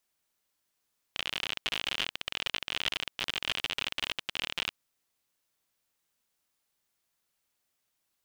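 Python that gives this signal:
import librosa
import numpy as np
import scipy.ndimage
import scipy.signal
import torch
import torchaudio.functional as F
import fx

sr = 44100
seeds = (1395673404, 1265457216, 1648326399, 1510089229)

y = fx.geiger_clicks(sr, seeds[0], length_s=3.56, per_s=58.0, level_db=-15.0)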